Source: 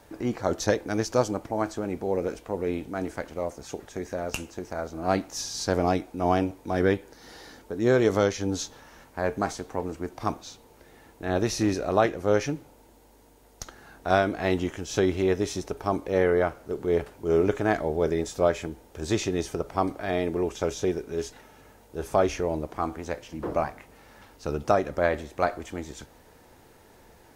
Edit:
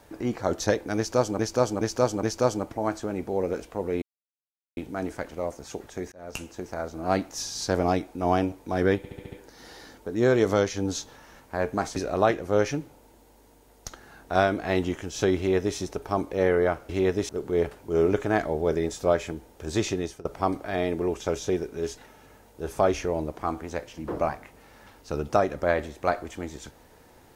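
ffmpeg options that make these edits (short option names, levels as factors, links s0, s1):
-filter_complex "[0:a]asplit=15[s0][s1][s2][s3][s4][s5][s6][s7][s8][s9][s10][s11][s12][s13][s14];[s0]atrim=end=1.392[s15];[s1]atrim=start=0.968:end=1.392[s16];[s2]atrim=start=0.968:end=1.392[s17];[s3]atrim=start=0.968:end=2.76,asetpts=PTS-STARTPTS,afade=t=out:st=1.788:d=0.004:c=hsin,apad=pad_dur=0.75[s18];[s4]atrim=start=2.76:end=4.11,asetpts=PTS-STARTPTS,afade=t=in:d=0.004:c=hsin,afade=t=out:st=1.346:d=0.004:c=hsin[s19];[s5]atrim=start=4.11:end=7.032,asetpts=PTS-STARTPTS,afade=t=in:d=0.53:c=qsin[s20];[s6]atrim=start=6.958:end=7.032[s21];[s7]atrim=start=6.958:end=7.032[s22];[s8]atrim=start=6.958:end=7.032[s23];[s9]atrim=start=6.958:end=7.032[s24];[s10]atrim=start=6.958:end=9.602[s25];[s11]atrim=start=11.708:end=16.642[s26];[s12]atrim=start=15.118:end=15.522[s27];[s13]atrim=start=16.638:end=19.6,asetpts=PTS-STARTPTS,afade=t=out:st=2.642:d=0.32:silence=0.125893[s28];[s14]atrim=start=19.6,asetpts=PTS-STARTPTS,afade=t=in:d=0.004:c=hsin:silence=0.125893[s29];[s15][s16]acrossfade=d=0.004:c1=hsin:c2=hsin[s30];[s30][s17]acrossfade=d=0.004:c1=hsin:c2=hsin[s31];[s18][s19][s20]concat=n=3:v=0:a=1[s32];[s31][s32]acrossfade=d=0.004:c1=hsin:c2=hsin[s33];[s33][s21]acrossfade=d=0.004:c1=hsin:c2=hsin[s34];[s34][s22]acrossfade=d=0.004:c1=hsin:c2=hsin[s35];[s35][s23]acrossfade=d=0.004:c1=hsin:c2=hsin[s36];[s36][s24]acrossfade=d=0.004:c1=hsin:c2=hsin[s37];[s37][s25]acrossfade=d=0.004:c1=hsin:c2=hsin[s38];[s38][s26]acrossfade=d=0.004:c1=hsin:c2=hsin[s39];[s39][s27]acrossfade=d=0.004:c1=hsin:c2=hsin[s40];[s28][s29]concat=n=2:v=0:a=1[s41];[s40][s41]acrossfade=d=0.004:c1=hsin:c2=hsin"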